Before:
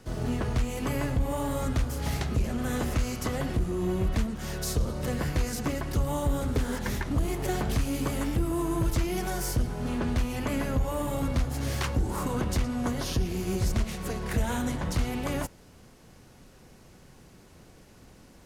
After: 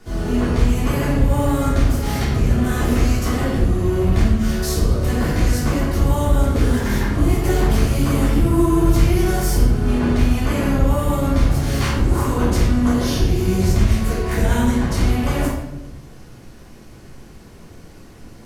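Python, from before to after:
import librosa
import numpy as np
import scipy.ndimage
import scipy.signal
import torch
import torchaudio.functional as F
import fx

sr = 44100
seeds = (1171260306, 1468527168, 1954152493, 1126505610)

y = fx.room_shoebox(x, sr, seeds[0], volume_m3=290.0, walls='mixed', distance_m=3.2)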